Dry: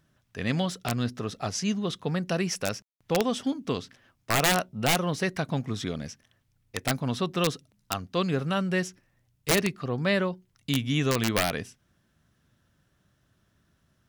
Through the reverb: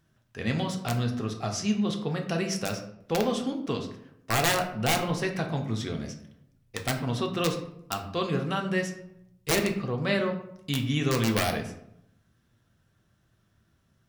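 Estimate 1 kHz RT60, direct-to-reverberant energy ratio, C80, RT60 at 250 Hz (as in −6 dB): 0.70 s, 3.0 dB, 11.5 dB, 0.90 s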